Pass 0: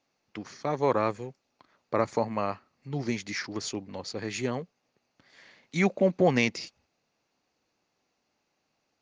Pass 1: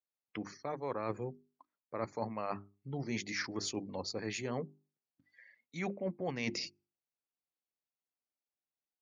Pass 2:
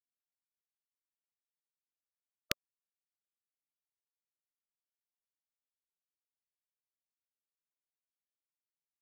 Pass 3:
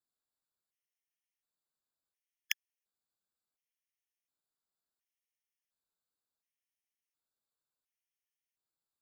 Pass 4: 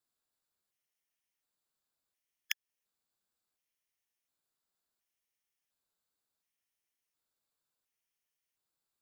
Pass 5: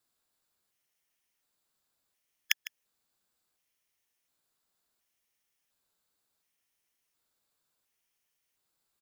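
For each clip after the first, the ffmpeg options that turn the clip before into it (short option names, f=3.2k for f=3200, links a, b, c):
-af "afftdn=nr=28:nf=-49,bandreject=f=50:t=h:w=6,bandreject=f=100:t=h:w=6,bandreject=f=150:t=h:w=6,bandreject=f=200:t=h:w=6,bandreject=f=250:t=h:w=6,bandreject=f=300:t=h:w=6,bandreject=f=350:t=h:w=6,bandreject=f=400:t=h:w=6,areverse,acompressor=threshold=-33dB:ratio=16,areverse"
-af "equalizer=f=3.3k:w=2.7:g=-12.5,acrusher=bits=3:mix=0:aa=0.000001,afftfilt=real='re*(1-between(b*sr/1024,650*pow(1600/650,0.5+0.5*sin(2*PI*3*pts/sr))/1.41,650*pow(1600/650,0.5+0.5*sin(2*PI*3*pts/sr))*1.41))':imag='im*(1-between(b*sr/1024,650*pow(1600/650,0.5+0.5*sin(2*PI*3*pts/sr))/1.41,650*pow(1600/650,0.5+0.5*sin(2*PI*3*pts/sr))*1.41))':win_size=1024:overlap=0.75,volume=11dB"
-af "afftfilt=real='re*gt(sin(2*PI*0.7*pts/sr)*(1-2*mod(floor(b*sr/1024/1700),2)),0)':imag='im*gt(sin(2*PI*0.7*pts/sr)*(1-2*mod(floor(b*sr/1024/1700),2)),0)':win_size=1024:overlap=0.75,volume=4dB"
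-af "acompressor=threshold=-38dB:ratio=2,volume=4dB"
-af "aecho=1:1:154:0.168,volume=7dB"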